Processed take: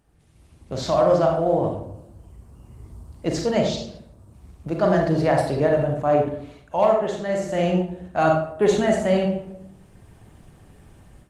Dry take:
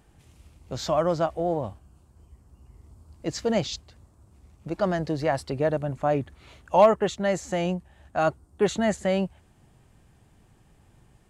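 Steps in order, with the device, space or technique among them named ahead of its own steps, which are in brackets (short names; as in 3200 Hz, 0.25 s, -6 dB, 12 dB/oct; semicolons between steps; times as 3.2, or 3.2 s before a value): speakerphone in a meeting room (reverb RT60 0.75 s, pre-delay 34 ms, DRR 0.5 dB; AGC gain up to 13.5 dB; gain -6 dB; Opus 24 kbps 48000 Hz)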